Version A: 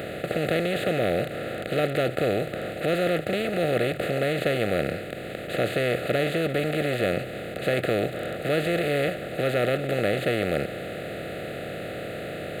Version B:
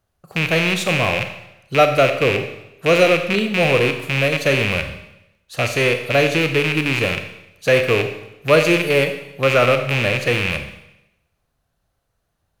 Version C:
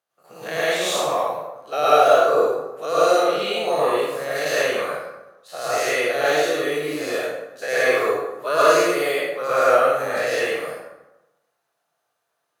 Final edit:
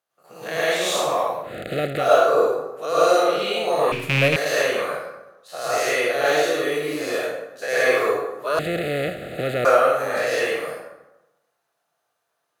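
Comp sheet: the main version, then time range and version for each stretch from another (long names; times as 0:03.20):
C
0:01.49–0:02.05: punch in from A, crossfade 0.16 s
0:03.92–0:04.36: punch in from B
0:08.59–0:09.65: punch in from A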